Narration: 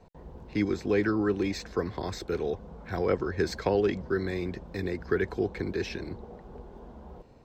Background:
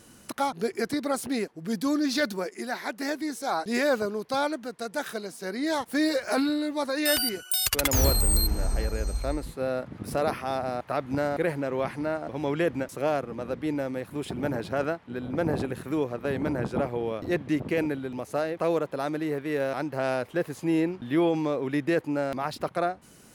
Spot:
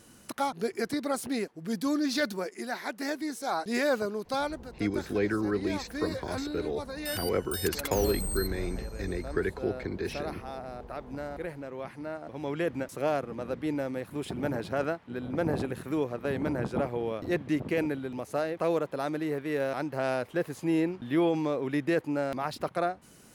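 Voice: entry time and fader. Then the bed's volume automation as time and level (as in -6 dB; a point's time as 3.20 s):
4.25 s, -2.5 dB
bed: 4.33 s -2.5 dB
4.78 s -10.5 dB
11.77 s -10.5 dB
12.97 s -2 dB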